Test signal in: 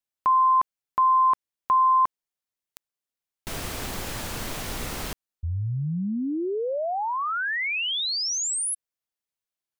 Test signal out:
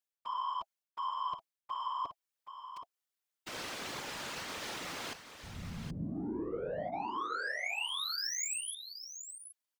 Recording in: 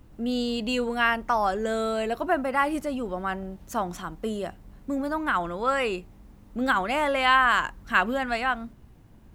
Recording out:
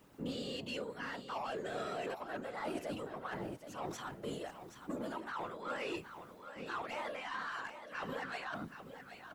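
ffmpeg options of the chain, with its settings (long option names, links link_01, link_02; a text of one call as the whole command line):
ffmpeg -i in.wav -filter_complex "[0:a]acrossover=split=6900[link_01][link_02];[link_02]acompressor=threshold=-53dB:ratio=4:attack=1:release=60[link_03];[link_01][link_03]amix=inputs=2:normalize=0,highpass=150,lowshelf=frequency=310:gain=-10.5,bandreject=frequency=710:width=16,areverse,acompressor=threshold=-31dB:ratio=10:attack=0.12:release=307:knee=1:detection=rms,areverse,asoftclip=type=tanh:threshold=-34.5dB,afftfilt=real='hypot(re,im)*cos(2*PI*random(0))':imag='hypot(re,im)*sin(2*PI*random(1))':win_size=512:overlap=0.75,asplit=2[link_04][link_05];[link_05]aecho=0:1:774:0.316[link_06];[link_04][link_06]amix=inputs=2:normalize=0,volume=6dB" out.wav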